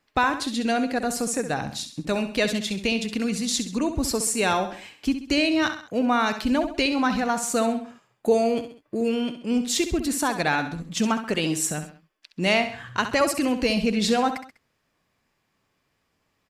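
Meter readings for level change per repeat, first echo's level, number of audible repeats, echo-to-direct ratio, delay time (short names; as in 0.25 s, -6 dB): -7.0 dB, -10.0 dB, 3, -9.0 dB, 66 ms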